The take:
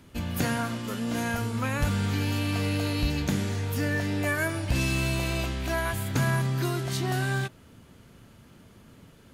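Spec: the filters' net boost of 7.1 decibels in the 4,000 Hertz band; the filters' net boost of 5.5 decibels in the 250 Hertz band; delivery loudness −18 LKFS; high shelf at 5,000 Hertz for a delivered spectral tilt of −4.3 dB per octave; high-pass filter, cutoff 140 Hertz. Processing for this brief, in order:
high-pass filter 140 Hz
parametric band 250 Hz +7.5 dB
parametric band 4,000 Hz +6.5 dB
high-shelf EQ 5,000 Hz +5 dB
level +7.5 dB

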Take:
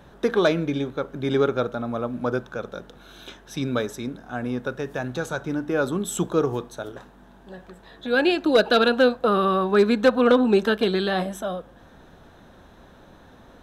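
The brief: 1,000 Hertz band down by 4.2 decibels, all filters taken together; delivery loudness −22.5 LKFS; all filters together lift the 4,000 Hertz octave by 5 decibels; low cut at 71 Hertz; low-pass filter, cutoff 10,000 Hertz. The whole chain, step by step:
high-pass filter 71 Hz
low-pass filter 10,000 Hz
parametric band 1,000 Hz −6.5 dB
parametric band 4,000 Hz +6 dB
level +1 dB

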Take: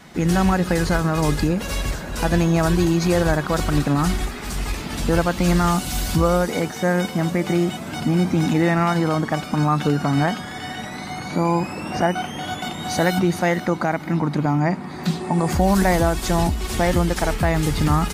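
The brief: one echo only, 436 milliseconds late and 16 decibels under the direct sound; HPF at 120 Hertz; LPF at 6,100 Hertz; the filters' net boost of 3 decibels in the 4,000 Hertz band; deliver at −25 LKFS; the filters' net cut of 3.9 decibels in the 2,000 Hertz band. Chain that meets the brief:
high-pass filter 120 Hz
low-pass filter 6,100 Hz
parametric band 2,000 Hz −6.5 dB
parametric band 4,000 Hz +6.5 dB
single-tap delay 436 ms −16 dB
level −3 dB

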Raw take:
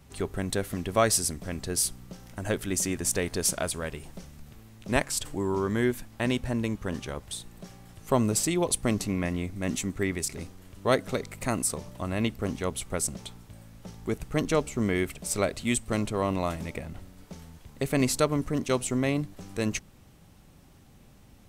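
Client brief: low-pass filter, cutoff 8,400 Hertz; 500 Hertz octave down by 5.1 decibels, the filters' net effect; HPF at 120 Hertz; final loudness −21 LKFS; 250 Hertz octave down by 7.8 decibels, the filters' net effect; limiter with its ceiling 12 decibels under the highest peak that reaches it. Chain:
high-pass filter 120 Hz
low-pass filter 8,400 Hz
parametric band 250 Hz −8.5 dB
parametric band 500 Hz −4 dB
level +14.5 dB
brickwall limiter −7 dBFS

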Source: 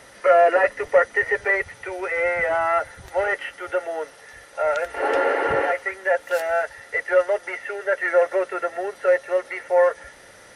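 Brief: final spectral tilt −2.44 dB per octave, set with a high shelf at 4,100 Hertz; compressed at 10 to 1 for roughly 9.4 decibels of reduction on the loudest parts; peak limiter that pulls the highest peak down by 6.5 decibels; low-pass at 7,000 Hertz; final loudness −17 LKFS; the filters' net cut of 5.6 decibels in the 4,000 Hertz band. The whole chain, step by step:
low-pass filter 7,000 Hz
parametric band 4,000 Hz −4.5 dB
high-shelf EQ 4,100 Hz −7 dB
downward compressor 10 to 1, threshold −21 dBFS
level +12 dB
brickwall limiter −7 dBFS

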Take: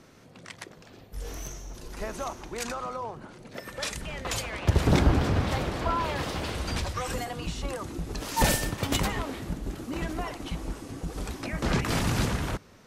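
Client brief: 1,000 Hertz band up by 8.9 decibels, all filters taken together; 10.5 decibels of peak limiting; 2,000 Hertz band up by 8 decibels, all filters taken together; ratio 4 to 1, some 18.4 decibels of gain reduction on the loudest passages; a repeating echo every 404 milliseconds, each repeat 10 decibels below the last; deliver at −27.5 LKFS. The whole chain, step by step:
parametric band 1,000 Hz +9 dB
parametric band 2,000 Hz +7 dB
downward compressor 4 to 1, threshold −38 dBFS
brickwall limiter −33 dBFS
repeating echo 404 ms, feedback 32%, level −10 dB
level +14.5 dB

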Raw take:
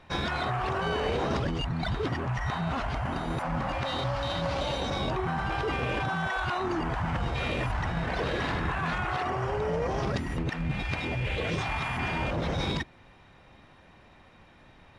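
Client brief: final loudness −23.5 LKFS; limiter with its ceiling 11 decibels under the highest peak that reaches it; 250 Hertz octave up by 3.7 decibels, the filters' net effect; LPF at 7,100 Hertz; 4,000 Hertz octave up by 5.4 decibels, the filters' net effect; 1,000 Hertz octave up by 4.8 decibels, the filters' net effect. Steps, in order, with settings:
low-pass filter 7,100 Hz
parametric band 250 Hz +5 dB
parametric band 1,000 Hz +5.5 dB
parametric band 4,000 Hz +6.5 dB
level +8.5 dB
brickwall limiter −15 dBFS

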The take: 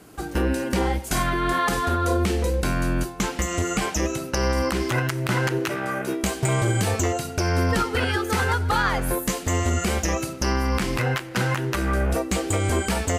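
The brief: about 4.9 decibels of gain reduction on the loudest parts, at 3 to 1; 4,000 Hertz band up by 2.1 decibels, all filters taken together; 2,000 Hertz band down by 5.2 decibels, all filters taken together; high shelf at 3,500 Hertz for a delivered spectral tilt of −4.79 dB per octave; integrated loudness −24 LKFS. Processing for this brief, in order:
parametric band 2,000 Hz −8 dB
high-shelf EQ 3,500 Hz −3.5 dB
parametric band 4,000 Hz +8 dB
downward compressor 3 to 1, threshold −25 dBFS
level +4.5 dB

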